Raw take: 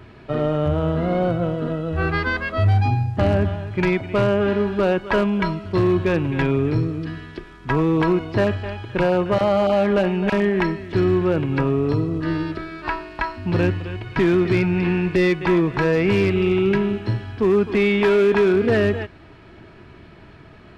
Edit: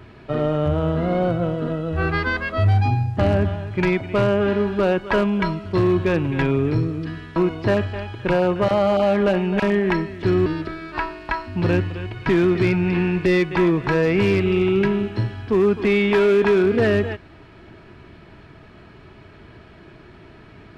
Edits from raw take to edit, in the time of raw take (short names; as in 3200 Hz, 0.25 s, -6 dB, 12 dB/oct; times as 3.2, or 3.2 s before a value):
7.36–8.06 cut
11.16–12.36 cut